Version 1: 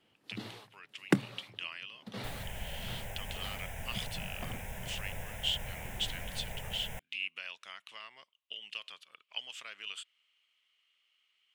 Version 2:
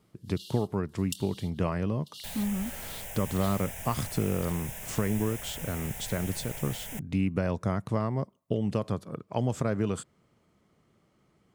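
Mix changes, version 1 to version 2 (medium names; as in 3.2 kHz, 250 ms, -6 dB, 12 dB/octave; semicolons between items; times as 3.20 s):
speech: remove resonant high-pass 2.9 kHz, resonance Q 5.5; first sound: add brick-wall FIR high-pass 2.7 kHz; master: add tone controls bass -3 dB, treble +10 dB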